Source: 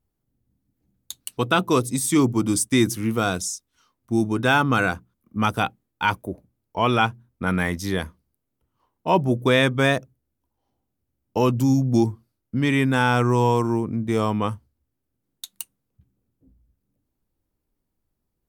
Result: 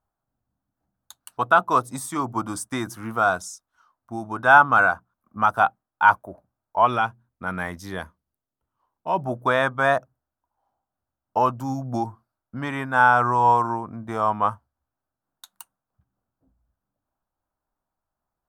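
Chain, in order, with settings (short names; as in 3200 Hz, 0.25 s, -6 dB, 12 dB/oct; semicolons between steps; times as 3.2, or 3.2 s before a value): band shelf 990 Hz +16 dB, from 6.85 s +8.5 dB, from 9.25 s +16 dB; noise-modulated level, depth 50%; gain -7.5 dB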